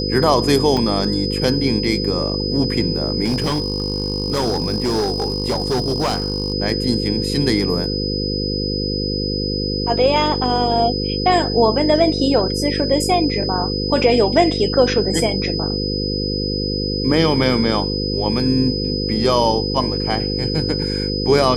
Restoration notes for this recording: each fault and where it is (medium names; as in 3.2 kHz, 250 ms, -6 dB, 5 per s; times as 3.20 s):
buzz 50 Hz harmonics 10 -23 dBFS
whine 5 kHz -24 dBFS
0.77 s: dropout 2.2 ms
3.24–6.54 s: clipped -15 dBFS